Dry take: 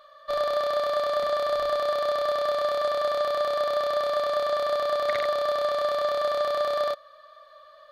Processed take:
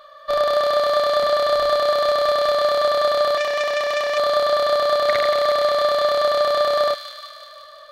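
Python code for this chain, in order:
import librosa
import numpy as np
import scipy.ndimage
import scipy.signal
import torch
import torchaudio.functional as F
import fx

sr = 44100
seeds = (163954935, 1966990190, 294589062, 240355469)

y = fx.overload_stage(x, sr, gain_db=18.5, at=(1.9, 2.51), fade=0.02)
y = fx.echo_wet_highpass(y, sr, ms=176, feedback_pct=66, hz=2200.0, wet_db=-5.5)
y = fx.transformer_sat(y, sr, knee_hz=2400.0, at=(3.37, 4.18))
y = y * librosa.db_to_amplitude(7.0)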